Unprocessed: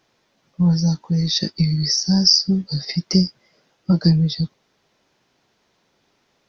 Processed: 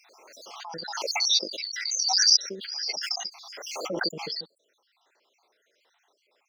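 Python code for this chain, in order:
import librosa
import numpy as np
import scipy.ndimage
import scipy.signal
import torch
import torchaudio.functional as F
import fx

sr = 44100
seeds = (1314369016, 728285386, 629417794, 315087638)

y = fx.spec_dropout(x, sr, seeds[0], share_pct=66)
y = scipy.signal.sosfilt(scipy.signal.butter(4, 430.0, 'highpass', fs=sr, output='sos'), y)
y = fx.pre_swell(y, sr, db_per_s=33.0)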